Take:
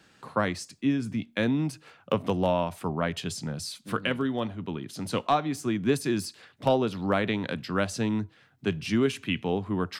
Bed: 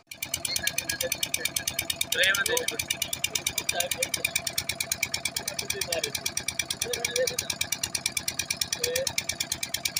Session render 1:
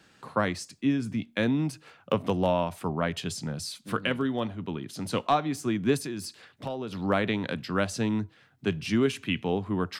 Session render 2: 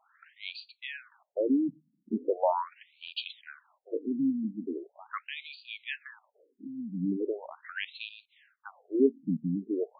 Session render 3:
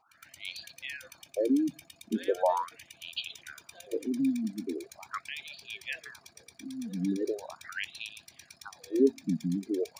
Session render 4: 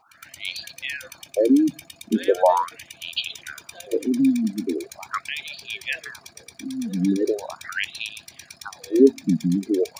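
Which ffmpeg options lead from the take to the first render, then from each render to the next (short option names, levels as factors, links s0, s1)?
-filter_complex "[0:a]asettb=1/sr,asplit=3[s0][s1][s2];[s0]atrim=end=5.984[s3];[s1]atrim=start=5.98:end=6.93,asetpts=PTS-STARTPTS,afade=t=in:d=0.004:c=qsin,afade=t=out:st=0.946:d=0.004:c=qsin,acompressor=threshold=0.0224:ratio=3:attack=3.2:release=140:knee=1:detection=peak[s4];[s2]atrim=start=6.926[s5];[s3][s4]acrossfade=d=0.004:c1=hsin:c2=qsin[s6];[s6][s5]acrossfade=d=0.004:c1=qsin:c2=hsin"
-filter_complex "[0:a]asplit=2[s0][s1];[s1]aeval=exprs='val(0)*gte(abs(val(0)),0.0133)':c=same,volume=0.316[s2];[s0][s2]amix=inputs=2:normalize=0,afftfilt=real='re*between(b*sr/1024,210*pow(3400/210,0.5+0.5*sin(2*PI*0.4*pts/sr))/1.41,210*pow(3400/210,0.5+0.5*sin(2*PI*0.4*pts/sr))*1.41)':imag='im*between(b*sr/1024,210*pow(3400/210,0.5+0.5*sin(2*PI*0.4*pts/sr))/1.41,210*pow(3400/210,0.5+0.5*sin(2*PI*0.4*pts/sr))*1.41)':win_size=1024:overlap=0.75"
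-filter_complex "[1:a]volume=0.0708[s0];[0:a][s0]amix=inputs=2:normalize=0"
-af "volume=2.99"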